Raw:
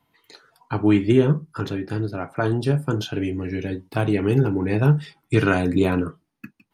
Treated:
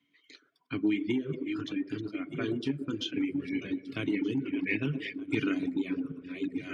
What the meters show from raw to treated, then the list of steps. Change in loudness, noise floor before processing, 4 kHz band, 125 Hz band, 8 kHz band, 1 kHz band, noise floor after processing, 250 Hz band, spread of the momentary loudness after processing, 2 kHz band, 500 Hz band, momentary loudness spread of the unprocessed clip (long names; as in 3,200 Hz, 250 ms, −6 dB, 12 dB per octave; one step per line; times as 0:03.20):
−10.5 dB, −74 dBFS, −4.0 dB, −19.0 dB, can't be measured, −19.0 dB, −71 dBFS, −8.0 dB, 6 LU, −7.5 dB, −14.5 dB, 10 LU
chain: feedback delay that plays each chunk backwards 612 ms, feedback 52%, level −10 dB
formant filter i
on a send: delay with a band-pass on its return 120 ms, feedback 33%, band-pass 520 Hz, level −5 dB
on the sum: gain on a spectral selection 0:04.45–0:05.15, 1,600–3,200 Hz +9 dB
downward compressor 8 to 1, threshold −28 dBFS, peak gain reduction 10.5 dB
reverb reduction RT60 1.5 s
graphic EQ with 15 bands 250 Hz −7 dB, 1,000 Hz +11 dB, 6,300 Hz +10 dB
level +8 dB